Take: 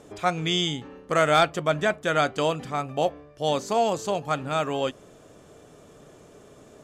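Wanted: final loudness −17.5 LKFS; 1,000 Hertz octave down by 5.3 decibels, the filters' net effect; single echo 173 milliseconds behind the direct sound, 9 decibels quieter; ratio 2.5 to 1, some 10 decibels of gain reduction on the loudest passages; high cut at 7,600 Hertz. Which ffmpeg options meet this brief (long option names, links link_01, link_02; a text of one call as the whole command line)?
ffmpeg -i in.wav -af "lowpass=7600,equalizer=frequency=1000:width_type=o:gain=-8.5,acompressor=threshold=-34dB:ratio=2.5,aecho=1:1:173:0.355,volume=17.5dB" out.wav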